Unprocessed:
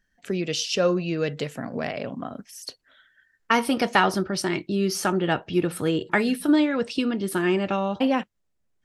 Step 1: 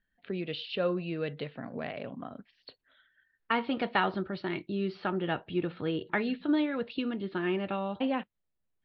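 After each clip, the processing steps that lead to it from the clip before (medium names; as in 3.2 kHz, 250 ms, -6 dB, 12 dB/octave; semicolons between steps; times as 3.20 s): steep low-pass 4.2 kHz 72 dB/octave; trim -8 dB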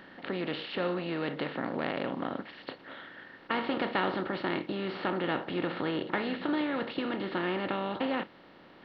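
spectral levelling over time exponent 0.4; trim -6 dB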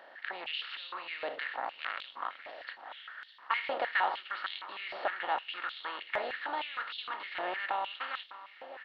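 feedback delay 606 ms, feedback 48%, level -15 dB; step-sequenced high-pass 6.5 Hz 650–3500 Hz; trim -5 dB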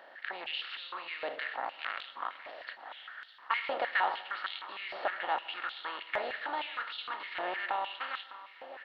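reverberation RT60 1.2 s, pre-delay 103 ms, DRR 17.5 dB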